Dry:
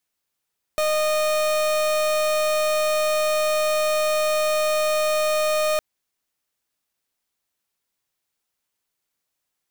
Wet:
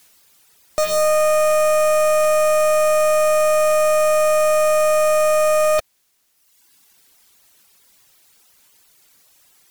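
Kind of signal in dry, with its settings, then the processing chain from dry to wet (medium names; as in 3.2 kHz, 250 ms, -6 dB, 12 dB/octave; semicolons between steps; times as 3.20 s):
pulse 615 Hz, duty 37% -21 dBFS 5.01 s
reverb removal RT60 1 s; treble shelf 2.8 kHz +4.5 dB; sine folder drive 20 dB, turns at -14.5 dBFS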